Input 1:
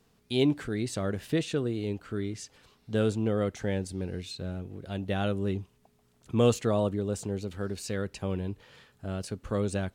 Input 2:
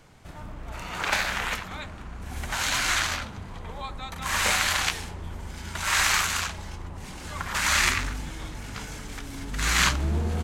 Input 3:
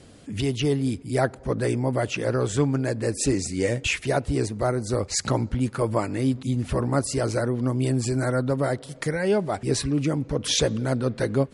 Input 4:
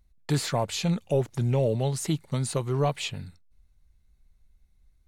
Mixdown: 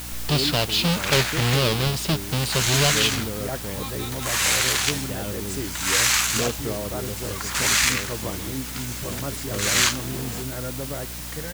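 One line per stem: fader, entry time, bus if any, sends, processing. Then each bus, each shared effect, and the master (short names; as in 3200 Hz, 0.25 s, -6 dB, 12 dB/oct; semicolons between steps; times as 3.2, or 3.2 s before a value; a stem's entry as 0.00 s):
-4.5 dB, 0.00 s, no send, dry
-4.0 dB, 0.00 s, no send, HPF 170 Hz 24 dB/oct; high shelf 2500 Hz +11.5 dB
-9.0 dB, 2.30 s, no send, dry
-1.5 dB, 0.00 s, no send, half-waves squared off; band shelf 3700 Hz +10 dB 1.2 oct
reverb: off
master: hum 60 Hz, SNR 13 dB; requantised 6-bit, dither triangular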